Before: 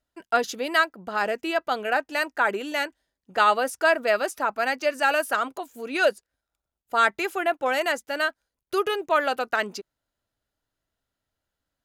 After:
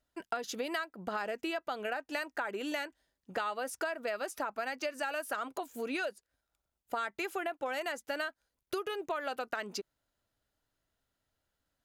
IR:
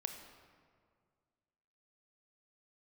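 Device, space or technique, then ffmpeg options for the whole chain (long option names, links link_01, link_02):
serial compression, leveller first: -af "acompressor=threshold=-26dB:ratio=2,acompressor=threshold=-33dB:ratio=5"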